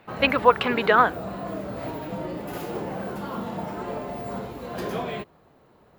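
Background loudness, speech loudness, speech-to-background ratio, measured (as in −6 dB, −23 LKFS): −33.0 LKFS, −20.5 LKFS, 12.5 dB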